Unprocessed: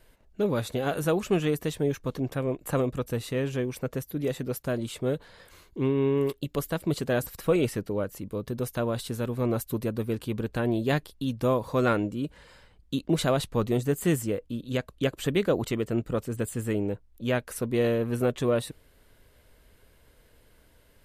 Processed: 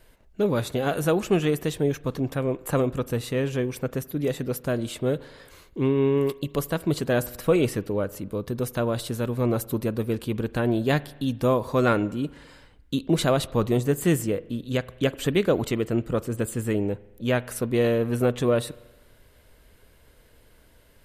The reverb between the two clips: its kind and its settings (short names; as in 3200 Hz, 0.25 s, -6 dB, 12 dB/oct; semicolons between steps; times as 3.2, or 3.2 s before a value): spring tank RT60 1.1 s, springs 41 ms, chirp 50 ms, DRR 19 dB; gain +3 dB